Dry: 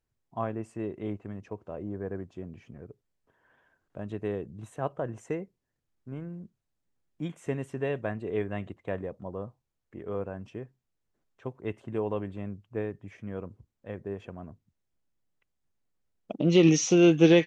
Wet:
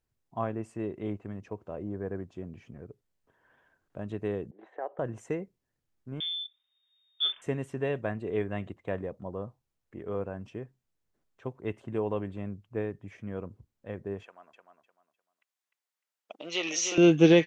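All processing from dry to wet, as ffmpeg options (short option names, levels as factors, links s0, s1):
-filter_complex "[0:a]asettb=1/sr,asplit=3[s0][s1][s2];[s0]atrim=end=4.514[s3];[s1]atrim=start=4.51:end=4.99,asetpts=PTS-STARTPTS,afade=t=in:d=0.004:c=qsin,afade=t=out:st=0.476:d=0.004:c=qsin,agate=range=0.0224:threshold=0.002:ratio=3:release=100:detection=peak,acompressor=threshold=0.0178:ratio=3:attack=3.2:release=140:knee=1:detection=peak,highpass=f=360:w=0.5412,highpass=f=360:w=1.3066,equalizer=f=370:t=q:w=4:g=6,equalizer=f=540:t=q:w=4:g=5,equalizer=f=780:t=q:w=4:g=8,equalizer=f=1200:t=q:w=4:g=-4,equalizer=f=1800:t=q:w=4:g=8,equalizer=f=2700:t=q:w=4:g=-9,lowpass=f=2900:w=0.5412,lowpass=f=2900:w=1.3066[s4];[s2]atrim=start=4.986[s5];[s3][s4]acrossfade=d=0.004:c1=hsin:c2=qsin[s6];[s6][s5]acrossfade=d=0.004:c1=qsin:c2=hsin,asettb=1/sr,asplit=3[s7][s8][s9];[s7]atrim=end=6.204[s10];[s8]atrim=start=6.2:end=7.42,asetpts=PTS-STARTPTS,afade=t=in:d=0.004:c=qsin,afade=t=out:st=1.216:d=0.004:c=qsin,acontrast=35,lowpass=f=3100:t=q:w=0.5098,lowpass=f=3100:t=q:w=0.6013,lowpass=f=3100:t=q:w=0.9,lowpass=f=3100:t=q:w=2.563,afreqshift=-3700[s11];[s9]atrim=start=7.416[s12];[s10][s11]acrossfade=d=0.004:c1=hsin:c2=qsin[s13];[s13][s12]acrossfade=d=0.004:c1=qsin:c2=hsin,asettb=1/sr,asplit=3[s14][s15][s16];[s14]atrim=end=14.234[s17];[s15]atrim=start=14.23:end=16.98,asetpts=PTS-STARTPTS,afade=t=in:d=0.004:c=qsin,afade=t=out:st=2.746:d=0.004:c=qsin,highpass=930,aecho=1:1:302|604|906:0.501|0.125|0.0313,atrim=end_sample=121275[s18];[s16]atrim=start=16.976[s19];[s17][s18]acrossfade=d=0.004:c1=hsin:c2=qsin[s20];[s20][s19]acrossfade=d=0.004:c1=qsin:c2=hsin"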